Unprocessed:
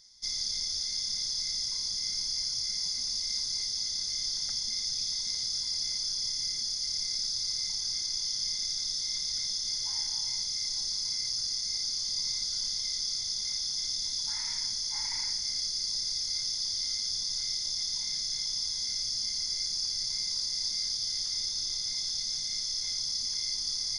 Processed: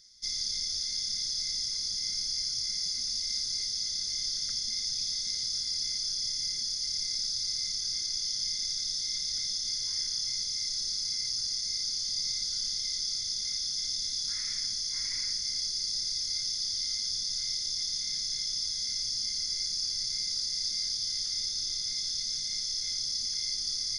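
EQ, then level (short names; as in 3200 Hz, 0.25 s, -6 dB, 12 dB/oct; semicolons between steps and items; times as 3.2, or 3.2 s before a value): Butterworth band-stop 830 Hz, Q 1.3; 0.0 dB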